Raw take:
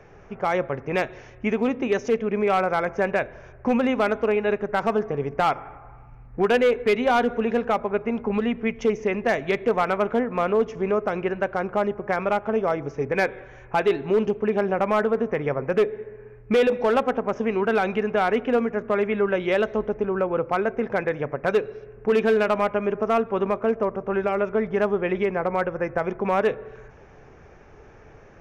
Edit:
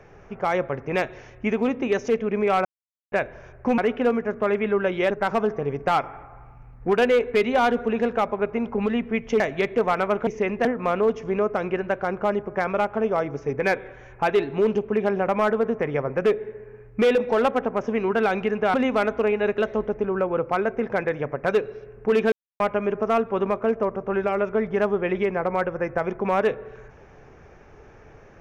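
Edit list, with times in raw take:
2.65–3.12 mute
3.78–4.62 swap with 18.26–19.58
8.92–9.3 move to 10.17
22.32–22.6 mute

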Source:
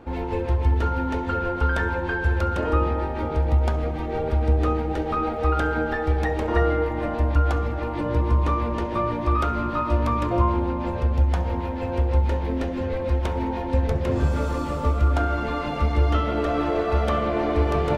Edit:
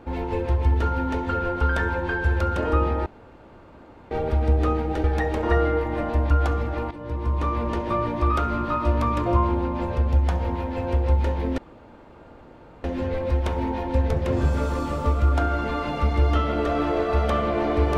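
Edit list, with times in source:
3.06–4.11 room tone
5.04–6.09 cut
7.96–8.71 fade in, from -14.5 dB
12.63 insert room tone 1.26 s

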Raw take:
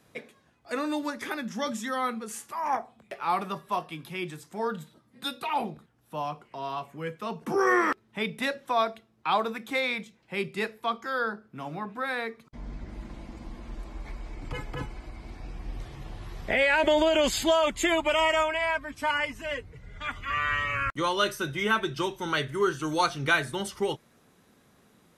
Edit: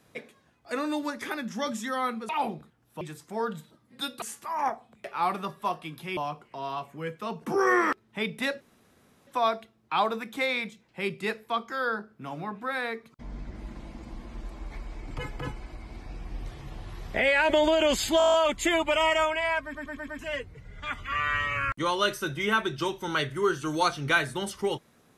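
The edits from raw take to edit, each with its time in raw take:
2.29–4.24 swap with 5.45–6.17
8.61 insert room tone 0.66 s
17.52 stutter 0.02 s, 9 plays
18.82 stutter in place 0.11 s, 5 plays

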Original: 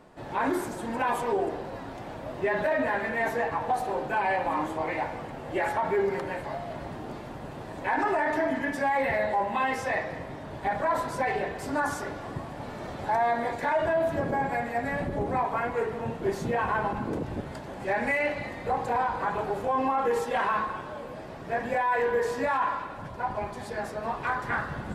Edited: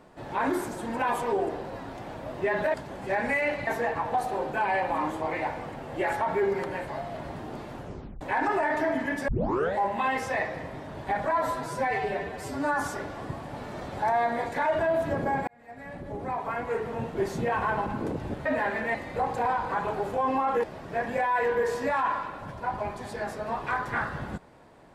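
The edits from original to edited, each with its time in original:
2.74–3.23 swap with 17.52–18.45
7.34 tape stop 0.43 s
8.84 tape start 0.48 s
10.87–11.86 stretch 1.5×
14.54–15.99 fade in
20.14–21.2 cut

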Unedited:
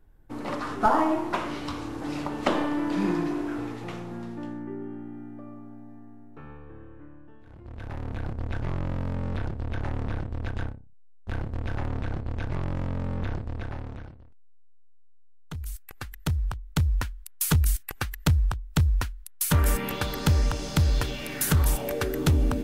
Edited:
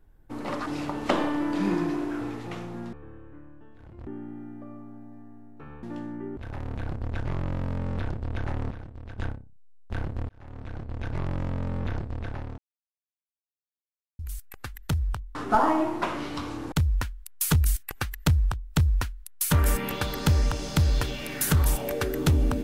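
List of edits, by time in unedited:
0.66–2.03 move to 16.72
4.3–4.84 swap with 6.6–7.74
10.08–10.55 gain -9.5 dB
11.66–12.57 fade in
13.95–15.56 mute

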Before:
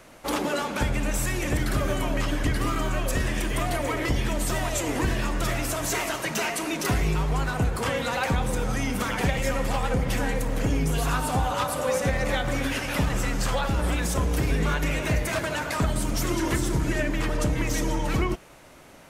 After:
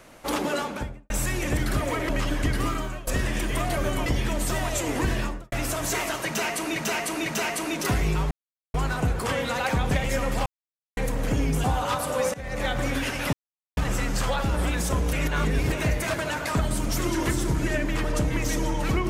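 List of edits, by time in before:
0.56–1.1 studio fade out
1.81–2.1 swap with 3.78–4.06
2.68–3.08 fade out, to -17 dB
5.18–5.52 studio fade out
6.26–6.76 loop, 3 plays
7.31 insert silence 0.43 s
8.48–9.24 cut
9.79–10.3 mute
10.97–11.33 cut
12.03–12.4 fade in, from -21.5 dB
13.02 insert silence 0.44 s
14.38–14.97 reverse

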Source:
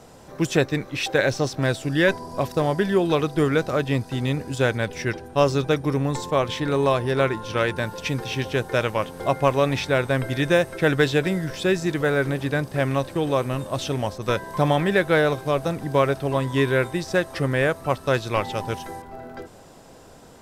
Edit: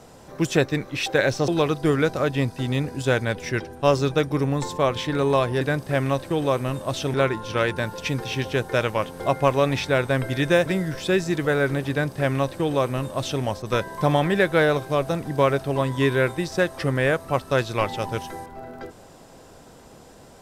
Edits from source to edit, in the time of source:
1.48–3.01 cut
10.66–11.22 cut
12.46–13.99 copy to 7.14

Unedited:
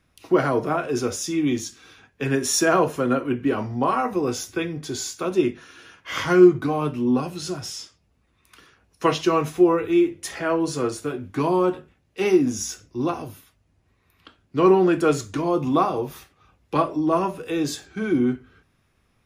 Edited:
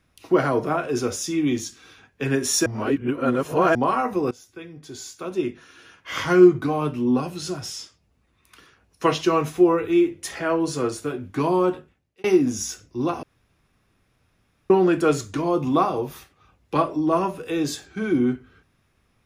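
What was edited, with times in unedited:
2.66–3.75 reverse
4.31–6.34 fade in, from -20.5 dB
11.73–12.24 fade out
13.23–14.7 room tone

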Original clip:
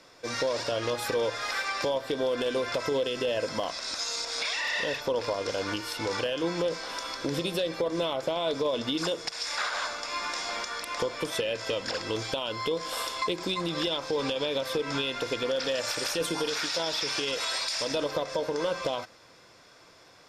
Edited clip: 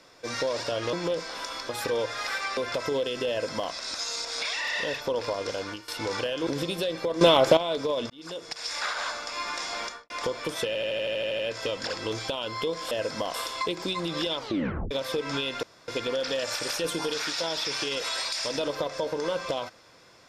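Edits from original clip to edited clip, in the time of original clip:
1.81–2.57 cut
3.29–3.72 copy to 12.95
5.37–5.88 fade out equal-power, to -16 dB
6.47–7.23 move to 0.93
7.97–8.33 gain +11.5 dB
8.86–9.42 fade in
10.61–10.86 studio fade out
11.43 stutter 0.08 s, 10 plays
13.99 tape stop 0.53 s
15.24 insert room tone 0.25 s

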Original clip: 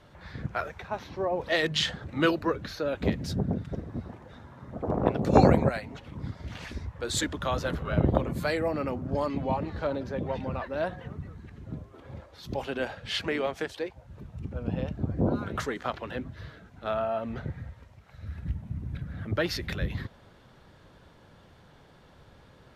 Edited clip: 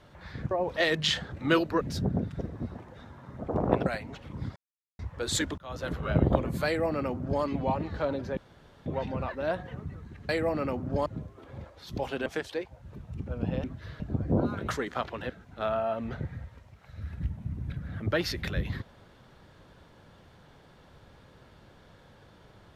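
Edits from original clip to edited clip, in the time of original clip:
0.51–1.23 cut
2.53–3.15 cut
5.2–5.68 cut
6.38–6.81 mute
7.4–7.82 fade in
8.48–9.25 copy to 11.62
10.19 insert room tone 0.49 s
12.82–13.51 cut
16.19–16.55 move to 14.89

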